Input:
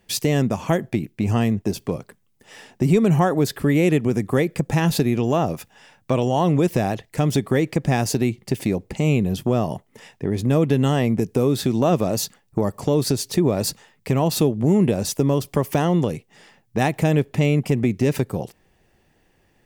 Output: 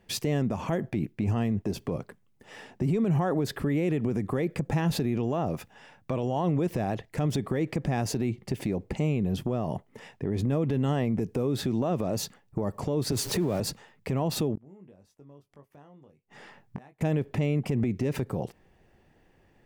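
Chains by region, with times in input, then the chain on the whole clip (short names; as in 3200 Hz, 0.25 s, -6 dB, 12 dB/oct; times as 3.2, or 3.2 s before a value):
13.12–13.6 zero-crossing step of -30.5 dBFS + high shelf 6100 Hz +7.5 dB + three-band squash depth 40%
14.55–17.01 flipped gate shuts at -25 dBFS, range -35 dB + bell 1200 Hz +4 dB 1.8 oct + doubler 21 ms -7 dB
whole clip: high shelf 3400 Hz -10.5 dB; limiter -19 dBFS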